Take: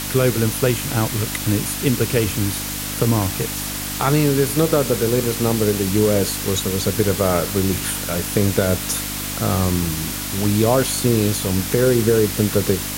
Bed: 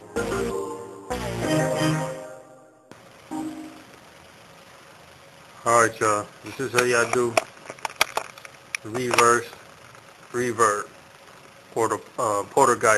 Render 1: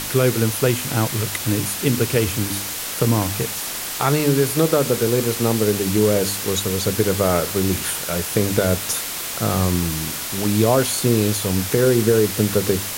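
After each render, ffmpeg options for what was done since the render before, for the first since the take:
-af "bandreject=f=50:t=h:w=4,bandreject=f=100:t=h:w=4,bandreject=f=150:t=h:w=4,bandreject=f=200:t=h:w=4,bandreject=f=250:t=h:w=4,bandreject=f=300:t=h:w=4"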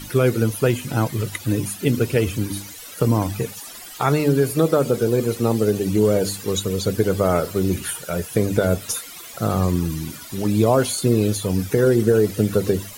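-af "afftdn=nr=16:nf=-28"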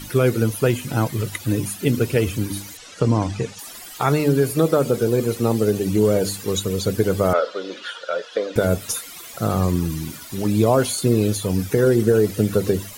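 -filter_complex "[0:a]asettb=1/sr,asplit=3[a][b][c];[a]atrim=end=2.774[d];[b]atrim=start=2.77:end=3.59,asetpts=PTS-STARTPTS,afade=t=in:d=0.004:c=qsin,afade=t=out:st=0.816:d=0.004:c=qsin,lowpass=f=7.4k:w=0.5412,lowpass=f=7.4k:w=1.3066[e];[c]atrim=start=3.586[f];[d][e]acrossfade=d=0.004:c1=hsin:c2=qsin[g];[g][f]acrossfade=d=0.004:c1=qsin:c2=hsin,asettb=1/sr,asplit=3[h][i][j];[h]atrim=end=7.334[k];[i]atrim=start=7.33:end=8.56,asetpts=PTS-STARTPTS,afade=t=in:d=0.004:c=qsin,afade=t=out:st=1.226:d=0.004:c=qsin,highpass=f=360:w=0.5412,highpass=f=360:w=1.3066,equalizer=f=370:t=q:w=4:g=-9,equalizer=f=530:t=q:w=4:g=7,equalizer=f=800:t=q:w=4:g=-4,equalizer=f=1.4k:t=q:w=4:g=6,equalizer=f=2.3k:t=q:w=4:g=-5,equalizer=f=3.4k:t=q:w=4:g=6,lowpass=f=5k:w=0.5412,lowpass=f=5k:w=1.3066[l];[j]atrim=start=8.556[m];[k][l]acrossfade=d=0.004:c1=hsin:c2=qsin[n];[n][m]acrossfade=d=0.004:c1=qsin:c2=hsin,asettb=1/sr,asplit=3[o][p][q];[o]atrim=end=9.784[r];[p]atrim=start=9.78:end=11.22,asetpts=PTS-STARTPTS,afade=t=in:d=0.004:c=qsin,afade=t=out:st=1.436:d=0.004:c=qsin,aeval=exprs='val(0)*gte(abs(val(0)),0.00794)':c=same[s];[q]atrim=start=11.216[t];[r][s]acrossfade=d=0.004:c1=hsin:c2=qsin[u];[u][t]acrossfade=d=0.004:c1=qsin:c2=hsin"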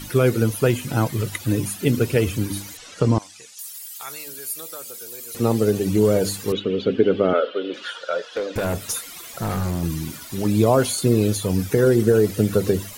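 -filter_complex "[0:a]asettb=1/sr,asplit=3[a][b][c];[a]atrim=end=3.184[d];[b]atrim=start=3.18:end=5.35,asetpts=PTS-STARTPTS,afade=t=in:d=0.004:c=qsin,afade=t=out:st=2.166:d=0.004:c=qsin,aderivative[e];[c]atrim=start=5.346[f];[d][e]acrossfade=d=0.004:c1=hsin:c2=qsin[g];[g][f]acrossfade=d=0.004:c1=qsin:c2=hsin,asettb=1/sr,asplit=3[h][i][j];[h]atrim=end=6.524[k];[i]atrim=start=6.52:end=7.74,asetpts=PTS-STARTPTS,afade=t=in:d=0.004:c=qsin,afade=t=out:st=1.216:d=0.004:c=qsin,highpass=190,equalizer=f=260:t=q:w=4:g=8,equalizer=f=400:t=q:w=4:g=5,equalizer=f=700:t=q:w=4:g=-3,equalizer=f=1k:t=q:w=4:g=-8,equalizer=f=1.9k:t=q:w=4:g=-3,equalizer=f=3k:t=q:w=4:g=9,lowpass=f=3.3k:w=0.5412,lowpass=f=3.3k:w=1.3066[l];[j]atrim=start=7.736[m];[k][l]acrossfade=d=0.004:c1=hsin:c2=qsin[n];[n][m]acrossfade=d=0.004:c1=qsin:c2=hsin,asettb=1/sr,asplit=3[o][p][q];[o]atrim=end=8.364[r];[p]atrim=start=8.36:end=9.83,asetpts=PTS-STARTPTS,afade=t=in:d=0.004:c=qsin,afade=t=out:st=1.466:d=0.004:c=qsin,asoftclip=type=hard:threshold=-20dB[s];[q]atrim=start=9.826[t];[r][s]acrossfade=d=0.004:c1=hsin:c2=qsin[u];[u][t]acrossfade=d=0.004:c1=qsin:c2=hsin"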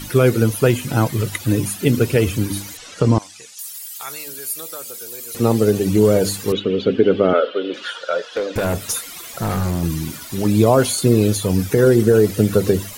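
-af "volume=3.5dB,alimiter=limit=-2dB:level=0:latency=1"

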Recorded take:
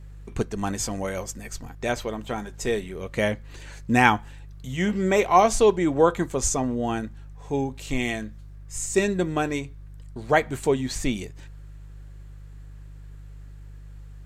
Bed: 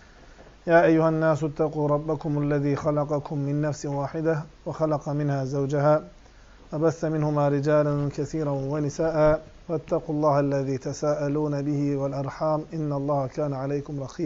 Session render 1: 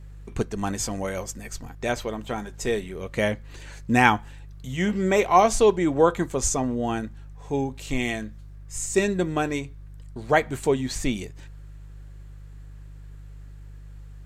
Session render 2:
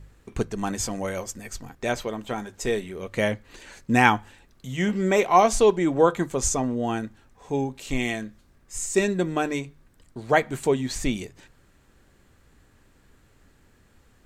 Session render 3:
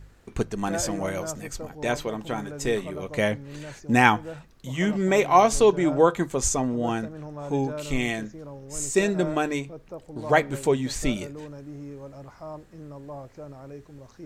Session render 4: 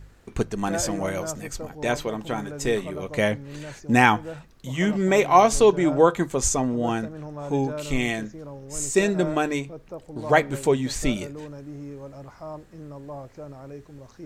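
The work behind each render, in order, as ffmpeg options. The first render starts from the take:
-af anull
-af "bandreject=f=50:t=h:w=4,bandreject=f=100:t=h:w=4,bandreject=f=150:t=h:w=4"
-filter_complex "[1:a]volume=-14dB[a];[0:a][a]amix=inputs=2:normalize=0"
-af "volume=1.5dB,alimiter=limit=-3dB:level=0:latency=1"

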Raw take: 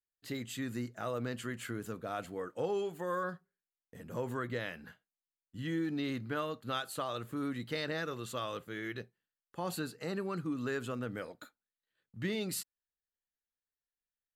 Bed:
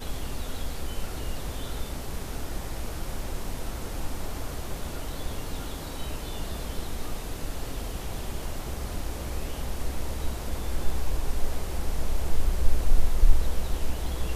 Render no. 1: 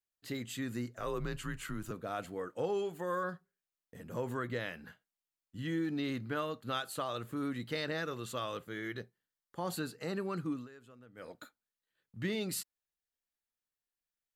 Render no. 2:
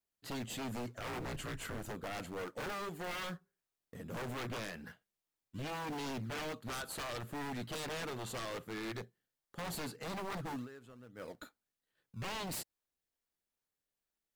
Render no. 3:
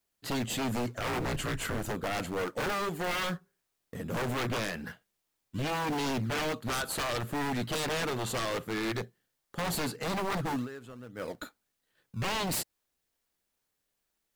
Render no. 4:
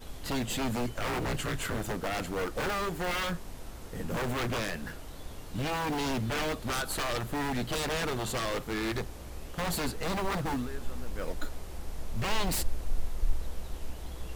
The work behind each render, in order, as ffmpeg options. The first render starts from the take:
-filter_complex "[0:a]asettb=1/sr,asplit=3[a][b][c];[a]atrim=end=0.974[d];[b]atrim=start=0.97:end=1.91,asetpts=PTS-STARTPTS,afade=t=in:d=0.004:c=qsin,afade=t=out:st=0.936:d=0.004:c=qsin,afreqshift=-95[e];[c]atrim=start=1.906[f];[d][e]acrossfade=d=0.004:c1=hsin:c2=qsin[g];[g][f]acrossfade=d=0.004:c1=qsin:c2=hsin,asettb=1/sr,asplit=3[h][i][j];[h]atrim=end=8.684[k];[i]atrim=start=8.68:end=9.77,asetpts=PTS-STARTPTS,afade=t=in:d=0.004:c=qsin,afade=t=out:st=1.086:d=0.004:c=qsin,bandreject=f=2.6k:w=7.4[l];[j]atrim=start=9.766[m];[k][l]acrossfade=d=0.004:c1=hsin:c2=qsin[n];[n][m]acrossfade=d=0.004:c1=qsin:c2=hsin,asplit=3[o][p][q];[o]atrim=end=10.68,asetpts=PTS-STARTPTS,afade=t=out:st=10.52:d=0.16:silence=0.112202[r];[p]atrim=start=10.68:end=11.15,asetpts=PTS-STARTPTS,volume=-19dB[s];[q]atrim=start=11.15,asetpts=PTS-STARTPTS,afade=t=in:d=0.16:silence=0.112202[t];[r][s][t]concat=n=3:v=0:a=1"
-filter_complex "[0:a]asplit=2[a][b];[b]acrusher=samples=24:mix=1:aa=0.000001:lfo=1:lforange=24:lforate=2.4,volume=-9.5dB[c];[a][c]amix=inputs=2:normalize=0,aeval=exprs='0.0168*(abs(mod(val(0)/0.0168+3,4)-2)-1)':c=same"
-af "volume=9dB"
-filter_complex "[1:a]volume=-10dB[a];[0:a][a]amix=inputs=2:normalize=0"

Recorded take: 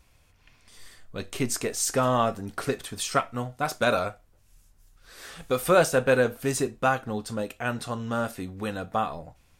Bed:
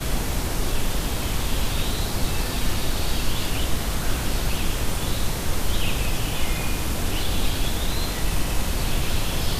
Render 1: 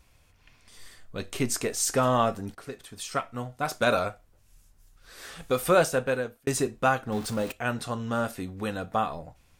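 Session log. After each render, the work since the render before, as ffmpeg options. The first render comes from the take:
-filter_complex "[0:a]asettb=1/sr,asplit=3[a][b][c];[a]atrim=end=7.124[d];[b]atrim=start=7.12:end=7.52,asetpts=PTS-STARTPTS,afade=t=in:d=0.004:c=qsin,afade=t=out:st=0.396:d=0.004:c=qsin,aeval=exprs='val(0)+0.5*0.0178*sgn(val(0))':c=same[e];[c]atrim=start=7.516[f];[d][e]acrossfade=d=0.004:c1=hsin:c2=qsin[g];[g][f]acrossfade=d=0.004:c1=qsin:c2=hsin,asplit=3[h][i][j];[h]atrim=end=2.55,asetpts=PTS-STARTPTS,afade=t=out:st=2.546:d=0.004:c=hsin:silence=0.188365[k];[i]atrim=start=2.55:end=6.47,asetpts=PTS-STARTPTS,afade=t=in:d=1.37:silence=0.188365,afade=t=out:st=2.86:d=1.06:c=qsin[l];[j]atrim=start=6.47,asetpts=PTS-STARTPTS,afade=t=in:d=0.004:c=hsin[m];[k][l][m]concat=n=3:v=0:a=1"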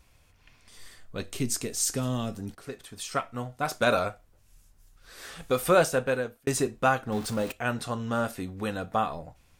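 -filter_complex "[0:a]asettb=1/sr,asplit=3[a][b][c];[a]atrim=end=1.234[d];[b]atrim=start=1.23:end=2.64,asetpts=PTS-STARTPTS,afade=t=in:d=0.004:c=qsin,afade=t=out:st=1.406:d=0.004:c=qsin,acrossover=split=360|3000[e][f][g];[f]acompressor=threshold=-51dB:ratio=2:attack=3.2:release=140:knee=2.83:detection=peak[h];[e][h][g]amix=inputs=3:normalize=0[i];[c]atrim=start=2.636[j];[d][i]acrossfade=d=0.004:c1=hsin:c2=qsin[k];[k][j]acrossfade=d=0.004:c1=qsin:c2=hsin"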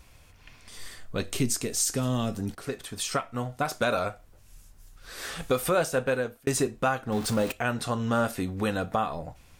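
-filter_complex "[0:a]asplit=2[a][b];[b]acompressor=threshold=-34dB:ratio=6,volume=1dB[c];[a][c]amix=inputs=2:normalize=0,alimiter=limit=-14.5dB:level=0:latency=1:release=384"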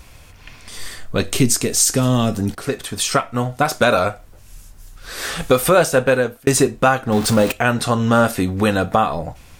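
-af "volume=11dB"

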